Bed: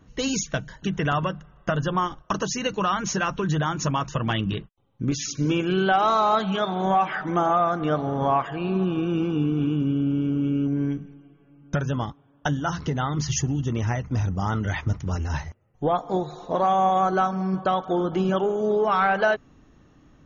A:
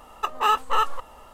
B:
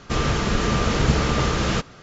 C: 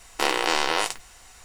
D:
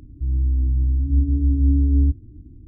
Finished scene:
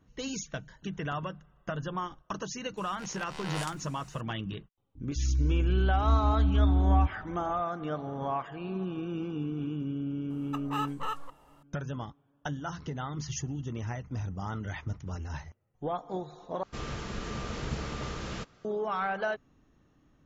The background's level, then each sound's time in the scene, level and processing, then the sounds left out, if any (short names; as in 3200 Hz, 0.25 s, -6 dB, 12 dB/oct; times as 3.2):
bed -10.5 dB
2.77 add C -8.5 dB + auto swell 0.525 s
4.95 add D -7 dB
10.3 add A -13 dB
16.63 replace with B -15.5 dB